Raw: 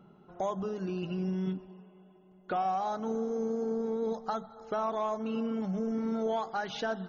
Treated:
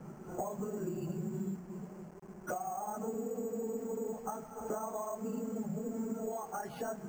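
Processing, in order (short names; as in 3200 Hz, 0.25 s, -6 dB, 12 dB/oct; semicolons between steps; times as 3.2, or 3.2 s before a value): phase scrambler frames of 50 ms; notches 60/120/180/240/300 Hz; compressor 20:1, threshold -43 dBFS, peak gain reduction 19.5 dB; requantised 10-bit, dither none; Bessel low-pass 1200 Hz, order 2; careless resampling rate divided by 6×, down filtered, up hold; mismatched tape noise reduction decoder only; gain +9 dB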